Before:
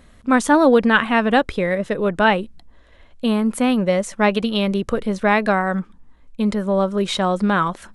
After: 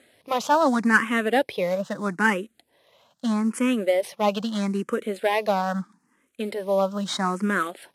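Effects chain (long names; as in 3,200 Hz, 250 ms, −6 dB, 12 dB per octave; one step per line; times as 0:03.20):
variable-slope delta modulation 64 kbit/s
high-pass filter 130 Hz 24 dB per octave
low-shelf EQ 250 Hz −7 dB
frequency shifter mixed with the dry sound +0.78 Hz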